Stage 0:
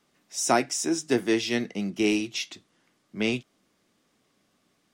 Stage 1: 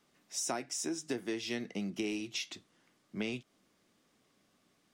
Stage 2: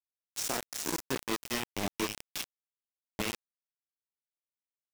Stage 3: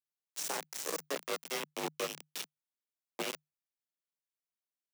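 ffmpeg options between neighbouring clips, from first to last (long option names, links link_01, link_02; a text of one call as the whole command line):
ffmpeg -i in.wav -af "acompressor=threshold=-31dB:ratio=6,volume=-2.5dB" out.wav
ffmpeg -i in.wav -af "aecho=1:1:30|67.5|114.4|173|246.2:0.631|0.398|0.251|0.158|0.1,aeval=exprs='sgn(val(0))*max(abs(val(0))-0.00158,0)':channel_layout=same,acrusher=bits=4:mix=0:aa=0.000001" out.wav
ffmpeg -i in.wav -af "afreqshift=150,volume=-3.5dB" out.wav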